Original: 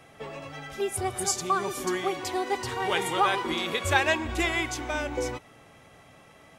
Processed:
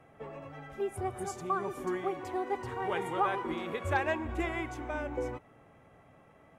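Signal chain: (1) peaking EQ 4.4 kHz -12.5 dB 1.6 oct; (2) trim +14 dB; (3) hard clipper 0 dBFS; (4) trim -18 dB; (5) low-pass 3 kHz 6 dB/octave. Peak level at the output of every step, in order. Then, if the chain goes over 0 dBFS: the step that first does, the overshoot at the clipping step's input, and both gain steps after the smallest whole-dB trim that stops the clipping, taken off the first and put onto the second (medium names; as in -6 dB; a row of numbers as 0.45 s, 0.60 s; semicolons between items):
-10.0 dBFS, +4.0 dBFS, 0.0 dBFS, -18.0 dBFS, -18.0 dBFS; step 2, 4.0 dB; step 2 +10 dB, step 4 -14 dB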